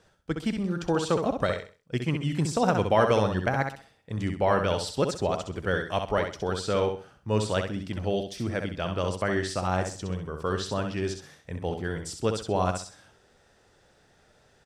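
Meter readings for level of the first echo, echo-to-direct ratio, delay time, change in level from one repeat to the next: -6.0 dB, -5.5 dB, 65 ms, -11.0 dB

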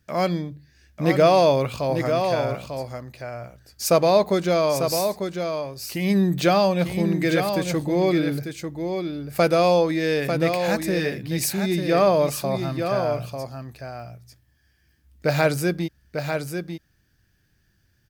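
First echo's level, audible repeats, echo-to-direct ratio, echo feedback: -6.5 dB, 1, -6.5 dB, no regular repeats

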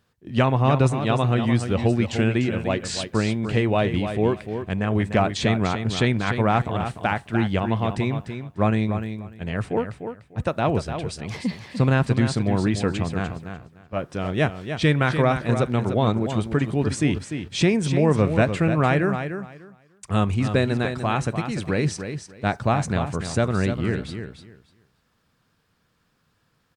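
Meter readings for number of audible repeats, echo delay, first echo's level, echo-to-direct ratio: 2, 297 ms, -8.5 dB, -8.5 dB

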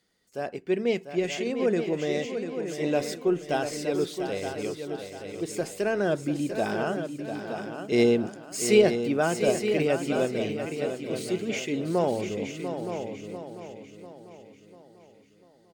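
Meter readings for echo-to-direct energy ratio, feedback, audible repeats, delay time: -5.0 dB, no regular repeats, 8, 694 ms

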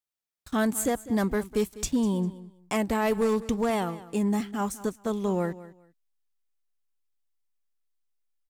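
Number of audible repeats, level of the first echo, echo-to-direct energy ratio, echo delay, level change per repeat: 2, -17.0 dB, -17.0 dB, 200 ms, -13.5 dB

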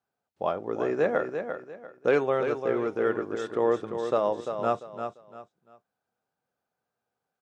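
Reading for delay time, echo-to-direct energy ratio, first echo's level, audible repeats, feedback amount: 345 ms, -7.0 dB, -7.5 dB, 3, 28%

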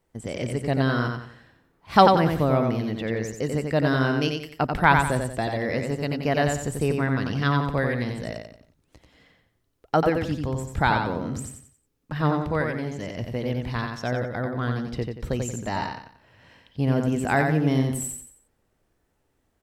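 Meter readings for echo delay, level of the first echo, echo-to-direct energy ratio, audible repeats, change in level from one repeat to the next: 90 ms, -4.5 dB, -4.0 dB, 4, -9.0 dB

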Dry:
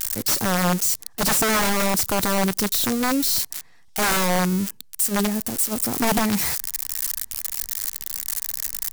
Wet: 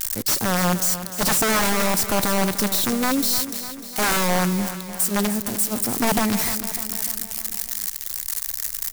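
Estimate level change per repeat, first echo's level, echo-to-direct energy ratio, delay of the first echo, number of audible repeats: -4.5 dB, -12.0 dB, -10.0 dB, 300 ms, 5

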